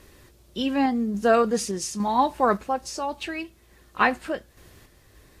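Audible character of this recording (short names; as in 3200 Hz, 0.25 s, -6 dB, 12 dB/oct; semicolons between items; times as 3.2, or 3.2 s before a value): random-step tremolo; AAC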